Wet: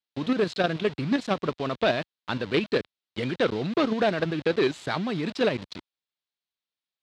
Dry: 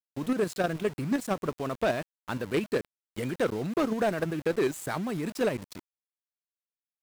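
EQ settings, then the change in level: high-pass 67 Hz; resonant low-pass 3.9 kHz, resonance Q 2.5; +3.0 dB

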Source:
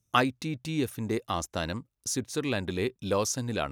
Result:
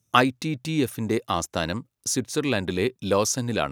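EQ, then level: high-pass 90 Hz; +5.5 dB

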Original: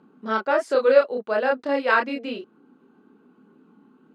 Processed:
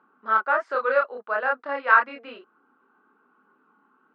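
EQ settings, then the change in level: band-pass filter 1.3 kHz, Q 2.3; distance through air 62 m; +6.0 dB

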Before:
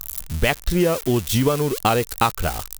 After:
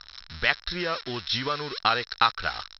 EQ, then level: rippled Chebyshev low-pass 5.5 kHz, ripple 9 dB; tilt shelf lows -8 dB; 0.0 dB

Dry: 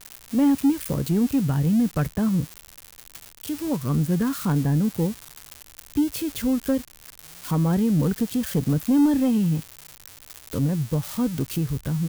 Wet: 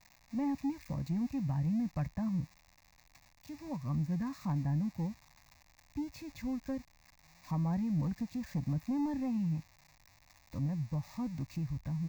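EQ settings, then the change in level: Savitzky-Golay filter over 9 samples; peaking EQ 5.1 kHz -7 dB 1.3 oct; static phaser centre 2.1 kHz, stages 8; -9.0 dB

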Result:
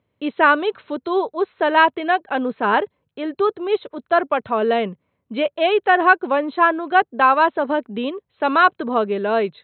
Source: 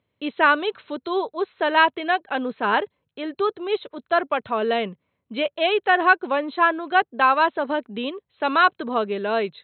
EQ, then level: treble shelf 2.6 kHz -9.5 dB; +4.5 dB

